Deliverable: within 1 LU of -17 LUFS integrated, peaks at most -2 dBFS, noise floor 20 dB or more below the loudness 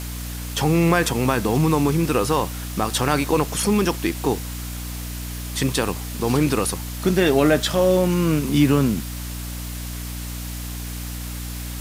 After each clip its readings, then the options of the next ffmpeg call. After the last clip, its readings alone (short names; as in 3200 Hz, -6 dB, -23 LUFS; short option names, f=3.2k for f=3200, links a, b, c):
hum 60 Hz; harmonics up to 300 Hz; hum level -29 dBFS; noise floor -31 dBFS; noise floor target -42 dBFS; loudness -22.0 LUFS; peak -4.5 dBFS; loudness target -17.0 LUFS
-> -af "bandreject=f=60:t=h:w=6,bandreject=f=120:t=h:w=6,bandreject=f=180:t=h:w=6,bandreject=f=240:t=h:w=6,bandreject=f=300:t=h:w=6"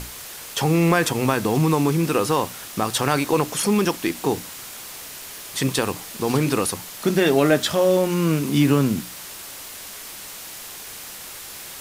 hum none; noise floor -37 dBFS; noise floor target -41 dBFS
-> -af "afftdn=nr=6:nf=-37"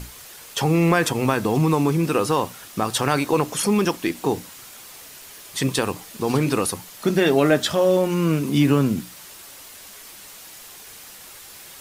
noise floor -43 dBFS; loudness -21.0 LUFS; peak -4.5 dBFS; loudness target -17.0 LUFS
-> -af "volume=4dB,alimiter=limit=-2dB:level=0:latency=1"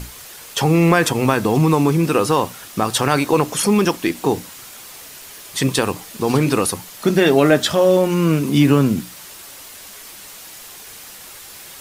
loudness -17.0 LUFS; peak -2.0 dBFS; noise floor -39 dBFS